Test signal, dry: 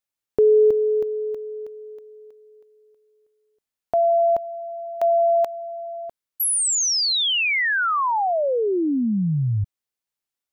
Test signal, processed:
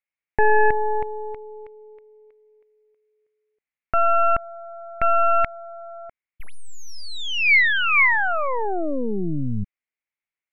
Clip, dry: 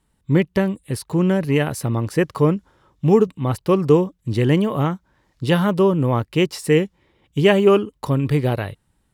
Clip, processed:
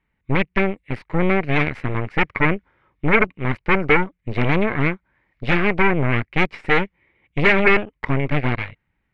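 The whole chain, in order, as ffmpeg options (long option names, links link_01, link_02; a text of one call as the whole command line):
ffmpeg -i in.wav -af "aeval=exprs='0.708*(cos(1*acos(clip(val(0)/0.708,-1,1)))-cos(1*PI/2))+0.251*(cos(8*acos(clip(val(0)/0.708,-1,1)))-cos(8*PI/2))':channel_layout=same,lowpass=frequency=2200:width_type=q:width=5.4,volume=-7dB" out.wav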